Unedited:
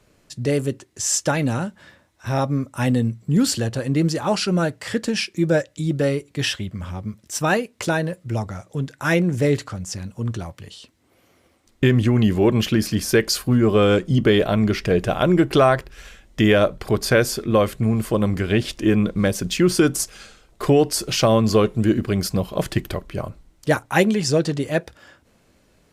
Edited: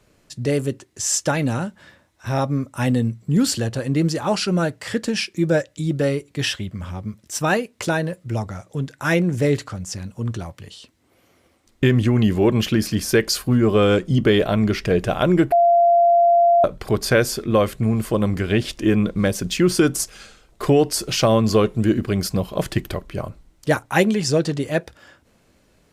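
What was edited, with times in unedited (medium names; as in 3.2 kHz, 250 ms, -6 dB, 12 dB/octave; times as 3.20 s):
15.52–16.64 s: bleep 689 Hz -11 dBFS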